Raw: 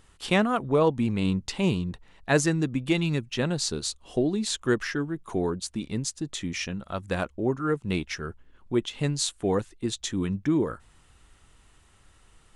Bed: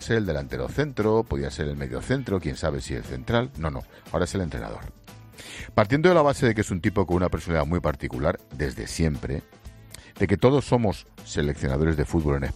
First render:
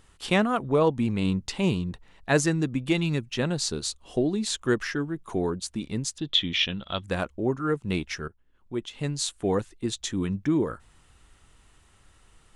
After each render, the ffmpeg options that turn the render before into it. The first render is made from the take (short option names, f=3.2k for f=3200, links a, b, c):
-filter_complex "[0:a]asettb=1/sr,asplit=3[a][b][c];[a]atrim=end=6.184[d];[b]atrim=start=6.18:end=7.04,asetpts=PTS-STARTPTS,afade=t=in:d=0.004:c=qsin,afade=t=out:st=0.856:d=0.004:c=qsin,lowpass=f=3.4k:t=q:w=8.6[e];[c]atrim=start=7.036[f];[d][e]acrossfade=d=0.004:c1=hsin:c2=qsin[g];[g][f]acrossfade=d=0.004:c1=qsin:c2=hsin,asplit=2[h][i];[h]atrim=end=8.28,asetpts=PTS-STARTPTS,afade=t=out:st=8.276:d=0.004:c=hsin:silence=0.141254[j];[i]atrim=start=8.28,asetpts=PTS-STARTPTS,afade=t=in:d=1.17:silence=0.141254[k];[j][k]concat=n=2:v=0:a=1"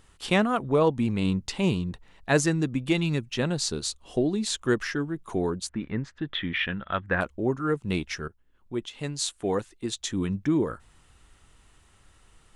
-filter_complex "[0:a]asettb=1/sr,asplit=3[a][b][c];[a]atrim=end=5.694[d];[b]atrim=start=5.69:end=7.21,asetpts=PTS-STARTPTS,afade=t=in:d=0.004:c=qsin,afade=t=out:st=1.516:d=0.004:c=qsin,lowpass=f=1.7k:t=q:w=3.3[e];[c]atrim=start=7.206[f];[d][e]acrossfade=d=0.004:c1=hsin:c2=qsin[g];[g][f]acrossfade=d=0.004:c1=qsin:c2=hsin,asettb=1/sr,asplit=3[h][i][j];[h]atrim=end=8.874[k];[i]atrim=start=8.87:end=10.11,asetpts=PTS-STARTPTS,afade=t=in:d=0.004:c=qsin,afade=t=out:st=1.236:d=0.004:c=qsin,lowshelf=f=220:g=-6.5[l];[j]atrim=start=10.106[m];[k][l]acrossfade=d=0.004:c1=hsin:c2=qsin[n];[n][m]acrossfade=d=0.004:c1=qsin:c2=hsin"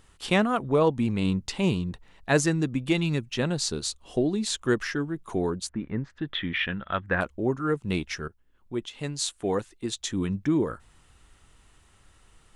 -filter_complex "[0:a]asettb=1/sr,asplit=3[a][b][c];[a]atrim=end=5.704[d];[b]atrim=start=5.7:end=6.1,asetpts=PTS-STARTPTS,afade=t=in:d=0.004:c=qsin,afade=t=out:st=0.396:d=0.004:c=qsin,lowpass=f=1.5k:p=1[e];[c]atrim=start=6.096[f];[d][e]acrossfade=d=0.004:c1=hsin:c2=qsin[g];[g][f]acrossfade=d=0.004:c1=qsin:c2=hsin"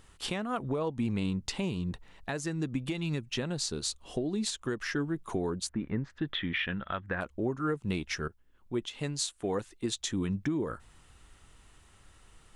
-af "acompressor=threshold=-26dB:ratio=6,alimiter=limit=-21dB:level=0:latency=1:release=355"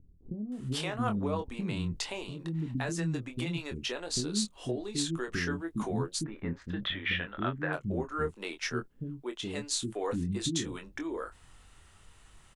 -filter_complex "[0:a]asplit=2[a][b];[b]adelay=24,volume=-7dB[c];[a][c]amix=inputs=2:normalize=0,acrossover=split=330[d][e];[e]adelay=520[f];[d][f]amix=inputs=2:normalize=0"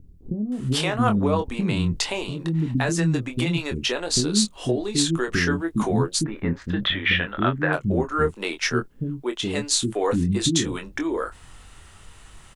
-af "volume=10.5dB"